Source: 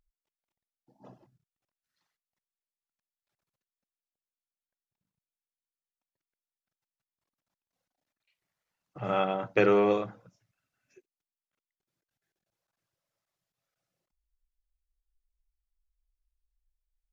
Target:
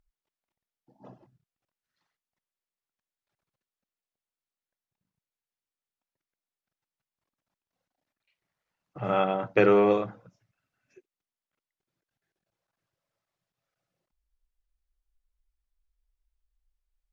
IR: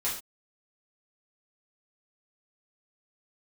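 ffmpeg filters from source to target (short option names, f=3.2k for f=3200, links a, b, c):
-af "aemphasis=mode=reproduction:type=cd,volume=2.5dB"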